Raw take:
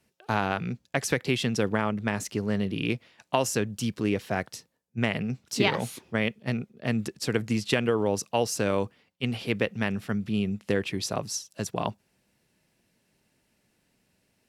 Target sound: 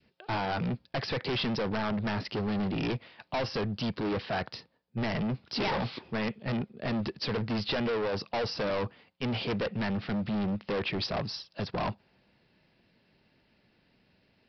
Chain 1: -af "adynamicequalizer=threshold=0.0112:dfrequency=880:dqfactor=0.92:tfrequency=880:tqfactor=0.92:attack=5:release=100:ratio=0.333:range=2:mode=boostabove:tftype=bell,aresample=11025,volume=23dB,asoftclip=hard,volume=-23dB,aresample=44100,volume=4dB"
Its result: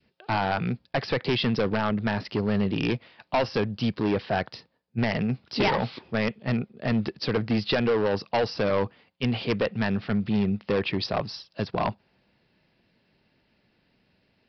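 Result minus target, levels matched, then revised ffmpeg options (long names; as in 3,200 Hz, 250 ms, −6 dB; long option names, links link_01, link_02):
gain into a clipping stage and back: distortion −5 dB
-af "adynamicequalizer=threshold=0.0112:dfrequency=880:dqfactor=0.92:tfrequency=880:tqfactor=0.92:attack=5:release=100:ratio=0.333:range=2:mode=boostabove:tftype=bell,aresample=11025,volume=32dB,asoftclip=hard,volume=-32dB,aresample=44100,volume=4dB"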